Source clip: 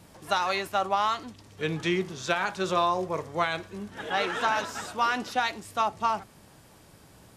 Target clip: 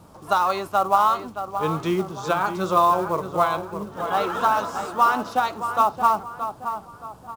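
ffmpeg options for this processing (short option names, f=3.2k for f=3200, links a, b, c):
-filter_complex "[0:a]highshelf=f=1.5k:t=q:w=3:g=-6,asplit=2[a][b];[b]adelay=623,lowpass=f=2.5k:p=1,volume=-9dB,asplit=2[c][d];[d]adelay=623,lowpass=f=2.5k:p=1,volume=0.39,asplit=2[e][f];[f]adelay=623,lowpass=f=2.5k:p=1,volume=0.39,asplit=2[g][h];[h]adelay=623,lowpass=f=2.5k:p=1,volume=0.39[i];[a][c][e][g][i]amix=inputs=5:normalize=0,acrusher=bits=6:mode=log:mix=0:aa=0.000001,volume=4dB"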